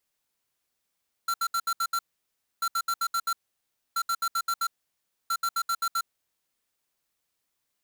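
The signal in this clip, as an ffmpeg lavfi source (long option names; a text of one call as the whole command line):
ffmpeg -f lavfi -i "aevalsrc='0.0473*(2*lt(mod(1360*t,1),0.5)-1)*clip(min(mod(mod(t,1.34),0.13),0.06-mod(mod(t,1.34),0.13))/0.005,0,1)*lt(mod(t,1.34),0.78)':duration=5.36:sample_rate=44100" out.wav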